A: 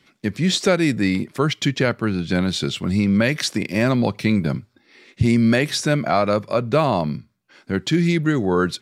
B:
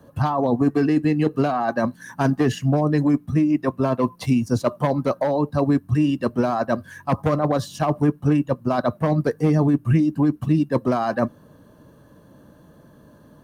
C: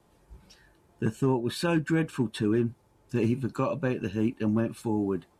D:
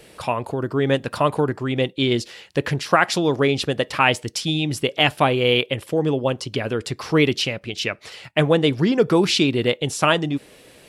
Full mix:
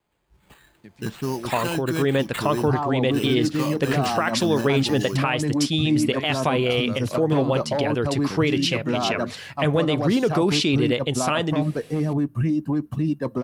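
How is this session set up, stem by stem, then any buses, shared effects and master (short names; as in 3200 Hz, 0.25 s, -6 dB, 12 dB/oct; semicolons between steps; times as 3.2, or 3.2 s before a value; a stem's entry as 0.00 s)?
-8.5 dB, 0.60 s, no send, compressor, threshold -21 dBFS, peak gain reduction 9 dB; auto duck -18 dB, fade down 1.35 s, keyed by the third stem
-2.5 dB, 2.50 s, no send, limiter -13 dBFS, peak gain reduction 5.5 dB
-14.0 dB, 0.00 s, no send, bell 3700 Hz +10 dB 2.5 oct; AGC gain up to 14.5 dB; sample-rate reducer 5600 Hz, jitter 0%
-0.5 dB, 1.25 s, no send, dry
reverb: off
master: limiter -11 dBFS, peak gain reduction 9 dB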